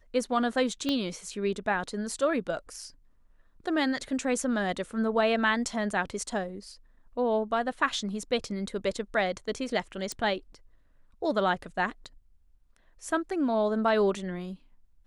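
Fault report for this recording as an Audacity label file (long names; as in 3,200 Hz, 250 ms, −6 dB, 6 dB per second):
0.890000	0.890000	click −16 dBFS
10.120000	10.120000	click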